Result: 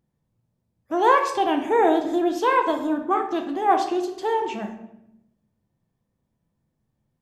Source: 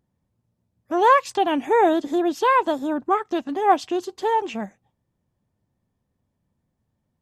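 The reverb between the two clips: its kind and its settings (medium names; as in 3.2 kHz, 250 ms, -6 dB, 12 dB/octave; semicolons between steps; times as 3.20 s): simulated room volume 250 m³, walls mixed, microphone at 0.69 m; trim -2.5 dB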